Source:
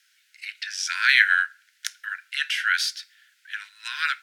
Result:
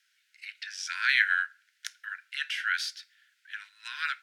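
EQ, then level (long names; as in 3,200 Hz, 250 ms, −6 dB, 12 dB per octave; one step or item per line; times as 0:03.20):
high-shelf EQ 5,800 Hz −5.5 dB
−6.0 dB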